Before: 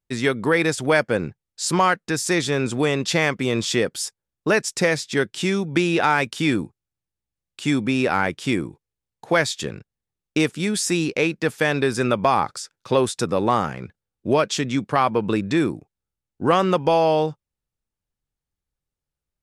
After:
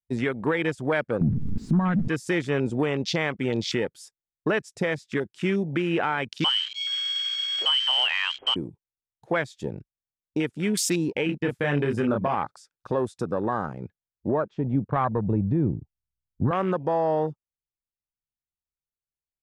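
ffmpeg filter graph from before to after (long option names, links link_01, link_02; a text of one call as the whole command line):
ffmpeg -i in.wav -filter_complex "[0:a]asettb=1/sr,asplit=3[link_01][link_02][link_03];[link_01]atrim=end=1.214[link_04];[link_02]atrim=start=1.21:end=2.08,asetpts=PTS-STARTPTS,afade=type=in:duration=0.004:curve=qsin,afade=type=out:start_time=0.866:duration=0.004:curve=qsin,aeval=exprs='val(0)+0.5*0.075*sgn(val(0))':channel_layout=same,lowpass=frequency=1000:poles=1,lowshelf=frequency=310:width_type=q:width=3:gain=9.5[link_05];[link_03]atrim=start=2.076[link_06];[link_04][link_05]acrossfade=duration=0.004:curve1=hsin:curve2=qsin[link_07];[link_07][link_06]acrossfade=duration=0.004:curve1=qsin:curve2=hsin,asettb=1/sr,asplit=3[link_08][link_09][link_10];[link_08]atrim=end=6.444[link_11];[link_09]atrim=start=6.44:end=8.56,asetpts=PTS-STARTPTS,afade=type=in:duration=0.004:curve=qsin,afade=type=out:start_time=2.116:duration=0.004:curve=qsin,aeval=exprs='val(0)+0.5*0.0316*sgn(val(0))':channel_layout=same,lowshelf=frequency=75:gain=11,lowpass=frequency=2800:width_type=q:width=0.5098,lowpass=frequency=2800:width_type=q:width=0.6013,lowpass=frequency=2800:width_type=q:width=0.9,lowpass=frequency=2800:width_type=q:width=2.563,afreqshift=-3300[link_12];[link_10]atrim=start=8.556[link_13];[link_11][link_12]acrossfade=duration=0.004:curve1=hsin:curve2=qsin[link_14];[link_14][link_13]acrossfade=duration=0.004:curve1=qsin:curve2=hsin,asettb=1/sr,asplit=3[link_15][link_16][link_17];[link_15]atrim=end=11.264[link_18];[link_16]atrim=start=11.26:end=12.35,asetpts=PTS-STARTPTS,afade=type=in:duration=0.004:curve=qsin,afade=type=out:start_time=1.086:duration=0.004:curve=qsin,agate=range=-33dB:threshold=-35dB:ratio=3:release=100:detection=peak,lowshelf=frequency=260:gain=6.5,asplit=2[link_19][link_20];[link_20]adelay=28,volume=-3.5dB[link_21];[link_19][link_21]amix=inputs=2:normalize=0,atrim=end_sample=48069[link_22];[link_17]atrim=start=12.346[link_23];[link_18][link_22]acrossfade=duration=0.004:curve1=hsin:curve2=qsin[link_24];[link_24][link_23]acrossfade=duration=0.004:curve1=qsin:curve2=hsin,asettb=1/sr,asplit=3[link_25][link_26][link_27];[link_25]atrim=end=14.284[link_28];[link_26]atrim=start=14.28:end=16.51,asetpts=PTS-STARTPTS,afade=type=in:duration=0.004:curve=qsin,afade=type=out:start_time=2.226:duration=0.004:curve=qsin,lowpass=1500,asubboost=boost=11.5:cutoff=150[link_29];[link_27]atrim=start=16.506[link_30];[link_28][link_29]acrossfade=duration=0.004:curve1=hsin:curve2=qsin[link_31];[link_31][link_30]acrossfade=duration=0.004:curve1=qsin:curve2=hsin,alimiter=limit=-14.5dB:level=0:latency=1:release=371,afwtdn=0.0251" out.wav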